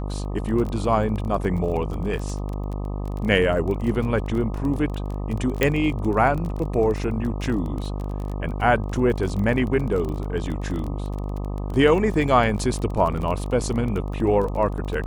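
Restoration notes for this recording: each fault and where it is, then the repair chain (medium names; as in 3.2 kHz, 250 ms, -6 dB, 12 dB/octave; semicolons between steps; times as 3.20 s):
buzz 50 Hz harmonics 25 -28 dBFS
crackle 24 per s -28 dBFS
5.63 s: pop -5 dBFS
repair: de-click; de-hum 50 Hz, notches 25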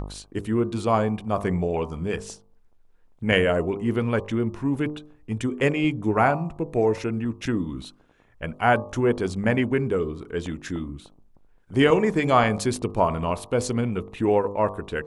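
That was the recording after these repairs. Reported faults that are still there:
5.63 s: pop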